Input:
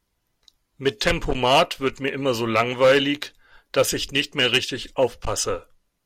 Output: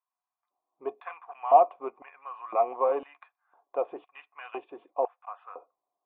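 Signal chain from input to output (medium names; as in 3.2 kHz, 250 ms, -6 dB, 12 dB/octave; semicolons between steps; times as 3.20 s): LFO high-pass square 0.99 Hz 350–1600 Hz; cascade formant filter a; trim +5 dB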